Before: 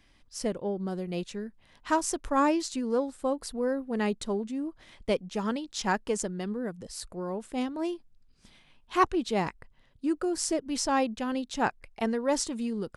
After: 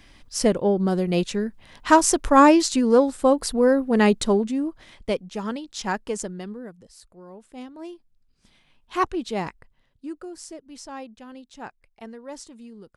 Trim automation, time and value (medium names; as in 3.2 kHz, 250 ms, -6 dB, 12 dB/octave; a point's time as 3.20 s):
4.29 s +11 dB
5.25 s +1 dB
6.32 s +1 dB
7.05 s -11 dB
8.96 s +0.5 dB
9.47 s +0.5 dB
10.54 s -11 dB